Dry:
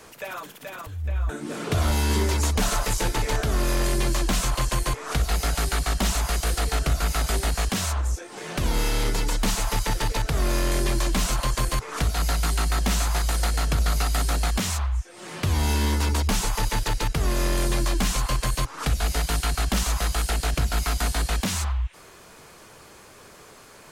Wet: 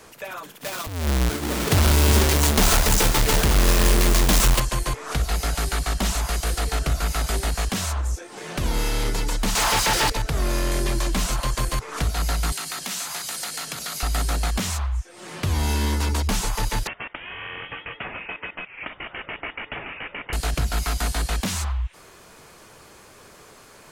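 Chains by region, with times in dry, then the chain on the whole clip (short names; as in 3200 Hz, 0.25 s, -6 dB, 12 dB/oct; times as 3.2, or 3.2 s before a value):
0.63–4.6 half-waves squared off + high shelf 2700 Hz +7.5 dB + echo 0.361 s -10.5 dB
9.55–10.1 overdrive pedal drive 35 dB, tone 7400 Hz, clips at -13.5 dBFS + Doppler distortion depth 0.23 ms
12.52–14.03 HPF 140 Hz 24 dB/oct + tilt shelf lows -6 dB, about 1300 Hz + compressor 2.5:1, threshold -28 dBFS
16.87–20.33 HPF 1000 Hz + inverted band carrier 3600 Hz
whole clip: dry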